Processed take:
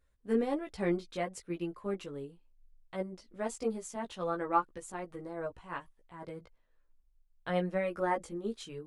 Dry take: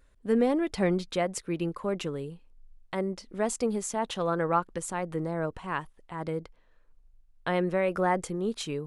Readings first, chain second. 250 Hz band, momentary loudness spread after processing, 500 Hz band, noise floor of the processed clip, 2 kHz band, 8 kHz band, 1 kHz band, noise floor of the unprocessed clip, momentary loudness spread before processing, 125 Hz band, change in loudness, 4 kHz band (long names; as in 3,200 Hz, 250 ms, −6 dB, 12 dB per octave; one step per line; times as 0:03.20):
−6.5 dB, 14 LU, −6.0 dB, −70 dBFS, −6.5 dB, −10.5 dB, −4.5 dB, −61 dBFS, 9 LU, −8.5 dB, −6.0 dB, −9.5 dB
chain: multi-voice chorus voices 4, 0.38 Hz, delay 16 ms, depth 1.9 ms
expander for the loud parts 1.5 to 1, over −39 dBFS